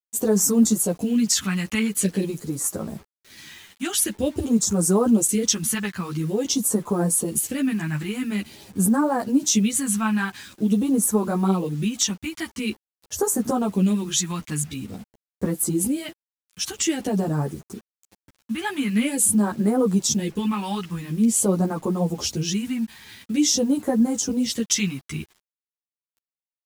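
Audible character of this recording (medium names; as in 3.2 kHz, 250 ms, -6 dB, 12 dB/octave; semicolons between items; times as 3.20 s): phasing stages 2, 0.47 Hz, lowest notch 470–2700 Hz; a quantiser's noise floor 8-bit, dither none; a shimmering, thickened sound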